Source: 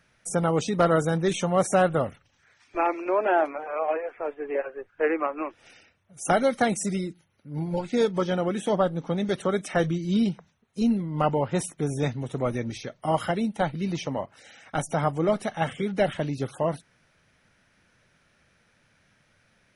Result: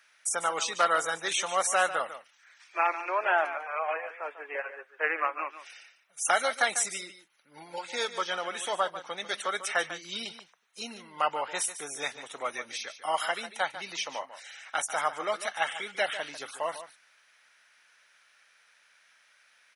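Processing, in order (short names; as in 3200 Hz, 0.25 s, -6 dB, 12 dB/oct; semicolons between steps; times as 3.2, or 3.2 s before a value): HPF 1200 Hz 12 dB/oct; on a send: echo 0.146 s -12.5 dB; on the sum: gain +4.5 dB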